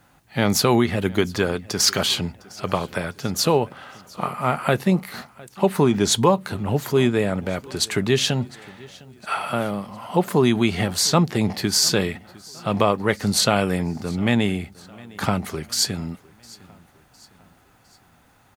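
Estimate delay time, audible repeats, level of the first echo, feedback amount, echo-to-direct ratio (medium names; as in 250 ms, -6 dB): 707 ms, 2, -23.0 dB, 49%, -22.0 dB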